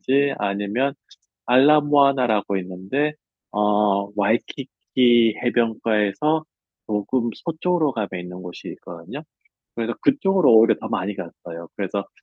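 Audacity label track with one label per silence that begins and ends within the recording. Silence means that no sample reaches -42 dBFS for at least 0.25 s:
1.140000	1.480000	silence
3.130000	3.530000	silence
4.640000	4.970000	silence
6.430000	6.890000	silence
9.230000	9.770000	silence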